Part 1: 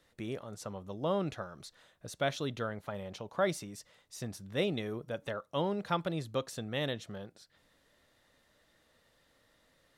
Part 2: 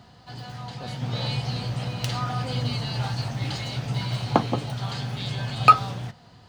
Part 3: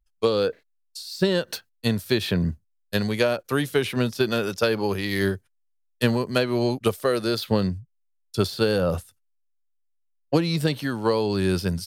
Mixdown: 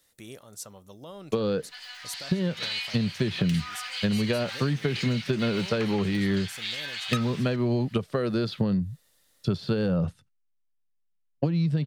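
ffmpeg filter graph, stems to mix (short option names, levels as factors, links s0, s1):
-filter_complex "[0:a]alimiter=level_in=1.78:limit=0.0631:level=0:latency=1:release=323,volume=0.562,highshelf=f=4100:g=11.5,volume=0.531[s0];[1:a]asoftclip=type=tanh:threshold=0.126,highpass=f=2000:t=q:w=2,adelay=1450,volume=1.12[s1];[2:a]lowpass=3100,equalizer=f=160:t=o:w=1.2:g=14.5,adelay=1100,volume=0.891[s2];[s0][s2]amix=inputs=2:normalize=0,highshelf=f=5400:g=9.5,acompressor=threshold=0.178:ratio=6,volume=1[s3];[s1][s3]amix=inputs=2:normalize=0,acompressor=threshold=0.0631:ratio=3"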